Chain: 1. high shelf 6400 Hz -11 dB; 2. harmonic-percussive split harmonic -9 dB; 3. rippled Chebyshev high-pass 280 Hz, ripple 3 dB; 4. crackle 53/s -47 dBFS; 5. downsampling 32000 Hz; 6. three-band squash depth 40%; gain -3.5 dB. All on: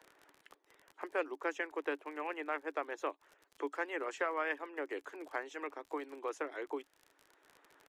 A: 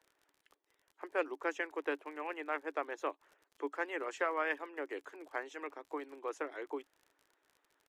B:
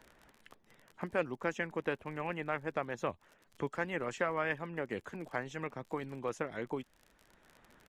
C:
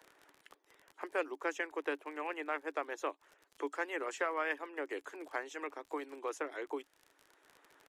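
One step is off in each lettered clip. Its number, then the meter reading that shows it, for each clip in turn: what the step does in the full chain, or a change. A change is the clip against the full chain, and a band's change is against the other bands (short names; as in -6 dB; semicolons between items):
6, momentary loudness spread change +2 LU; 3, 250 Hz band +2.0 dB; 1, 8 kHz band +4.5 dB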